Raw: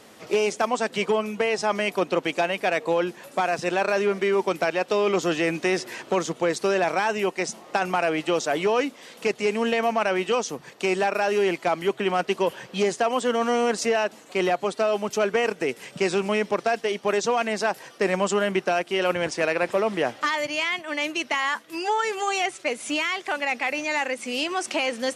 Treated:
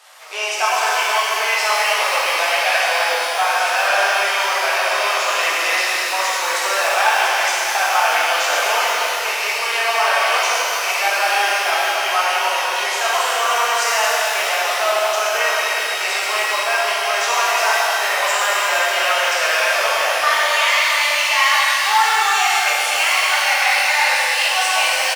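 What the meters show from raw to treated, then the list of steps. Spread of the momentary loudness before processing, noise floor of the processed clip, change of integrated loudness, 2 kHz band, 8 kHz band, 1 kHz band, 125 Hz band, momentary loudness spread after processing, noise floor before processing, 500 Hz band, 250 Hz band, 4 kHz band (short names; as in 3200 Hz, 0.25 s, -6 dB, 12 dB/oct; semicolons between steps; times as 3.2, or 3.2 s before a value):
4 LU, -21 dBFS, +8.5 dB, +12.0 dB, +14.0 dB, +10.0 dB, under -30 dB, 4 LU, -49 dBFS, -0.5 dB, under -15 dB, +13.5 dB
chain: HPF 770 Hz 24 dB/oct; frequency-shifting echo 0.221 s, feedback 33%, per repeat -31 Hz, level -10.5 dB; shimmer reverb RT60 3.7 s, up +12 st, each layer -8 dB, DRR -8.5 dB; gain +2 dB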